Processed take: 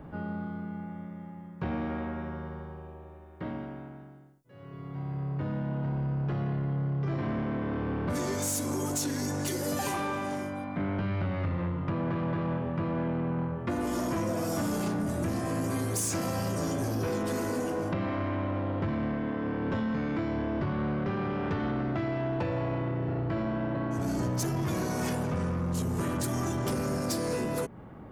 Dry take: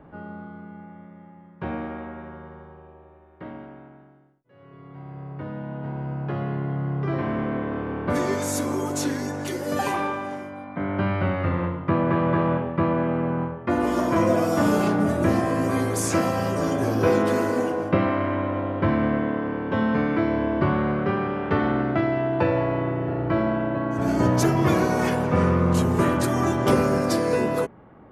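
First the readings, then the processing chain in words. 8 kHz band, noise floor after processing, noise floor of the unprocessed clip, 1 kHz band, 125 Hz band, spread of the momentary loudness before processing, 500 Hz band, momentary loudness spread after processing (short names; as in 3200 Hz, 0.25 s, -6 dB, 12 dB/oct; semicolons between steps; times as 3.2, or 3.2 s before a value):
-1.0 dB, -46 dBFS, -49 dBFS, -9.5 dB, -4.5 dB, 15 LU, -9.5 dB, 9 LU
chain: tone controls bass +6 dB, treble +11 dB; compressor 4:1, threshold -26 dBFS, peak gain reduction 12 dB; soft clip -24.5 dBFS, distortion -15 dB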